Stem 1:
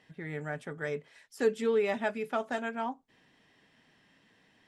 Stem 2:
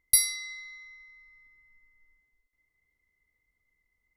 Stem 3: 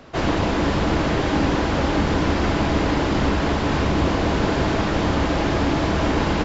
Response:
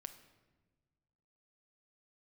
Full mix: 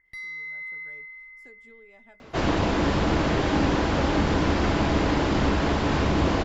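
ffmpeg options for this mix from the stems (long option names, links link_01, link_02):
-filter_complex "[0:a]acompressor=threshold=-31dB:ratio=6,adelay=50,volume=-19.5dB[link_01];[1:a]alimiter=limit=-13dB:level=0:latency=1:release=498,lowpass=frequency=1800:width_type=q:width=11,volume=1.5dB[link_02];[2:a]adelay=2200,volume=-2.5dB[link_03];[link_01][link_02]amix=inputs=2:normalize=0,alimiter=level_in=8dB:limit=-24dB:level=0:latency=1,volume=-8dB,volume=0dB[link_04];[link_03][link_04]amix=inputs=2:normalize=0"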